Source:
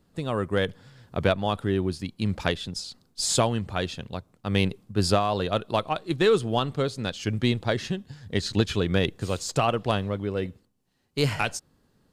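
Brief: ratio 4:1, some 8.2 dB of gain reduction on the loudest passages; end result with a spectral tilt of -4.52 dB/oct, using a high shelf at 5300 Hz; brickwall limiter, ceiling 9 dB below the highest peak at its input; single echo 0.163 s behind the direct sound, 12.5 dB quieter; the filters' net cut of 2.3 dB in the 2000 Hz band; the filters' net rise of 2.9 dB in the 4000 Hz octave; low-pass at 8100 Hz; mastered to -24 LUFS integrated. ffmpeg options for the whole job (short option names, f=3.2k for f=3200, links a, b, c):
-af "lowpass=8.1k,equalizer=f=2k:t=o:g=-5,equalizer=f=4k:t=o:g=3,highshelf=f=5.3k:g=5.5,acompressor=threshold=-26dB:ratio=4,alimiter=limit=-22.5dB:level=0:latency=1,aecho=1:1:163:0.237,volume=10dB"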